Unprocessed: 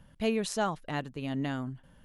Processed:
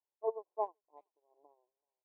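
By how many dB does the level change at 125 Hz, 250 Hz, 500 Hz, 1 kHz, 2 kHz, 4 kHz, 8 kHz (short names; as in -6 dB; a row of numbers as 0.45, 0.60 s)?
under -40 dB, under -35 dB, -6.0 dB, -6.5 dB, under -40 dB, under -40 dB, under -40 dB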